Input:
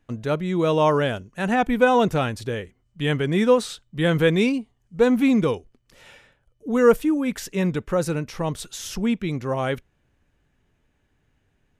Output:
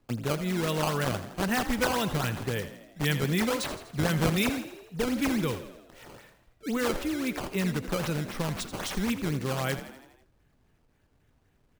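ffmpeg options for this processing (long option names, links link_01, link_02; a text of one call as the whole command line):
ffmpeg -i in.wav -filter_complex "[0:a]acrossover=split=140|1500|4200[link_01][link_02][link_03][link_04];[link_02]acompressor=threshold=-30dB:ratio=6[link_05];[link_01][link_05][link_03][link_04]amix=inputs=4:normalize=0,acrusher=samples=14:mix=1:aa=0.000001:lfo=1:lforange=22.4:lforate=3.8,asplit=7[link_06][link_07][link_08][link_09][link_10][link_11][link_12];[link_07]adelay=82,afreqshift=40,volume=-12.5dB[link_13];[link_08]adelay=164,afreqshift=80,volume=-17.2dB[link_14];[link_09]adelay=246,afreqshift=120,volume=-22dB[link_15];[link_10]adelay=328,afreqshift=160,volume=-26.7dB[link_16];[link_11]adelay=410,afreqshift=200,volume=-31.4dB[link_17];[link_12]adelay=492,afreqshift=240,volume=-36.2dB[link_18];[link_06][link_13][link_14][link_15][link_16][link_17][link_18]amix=inputs=7:normalize=0" out.wav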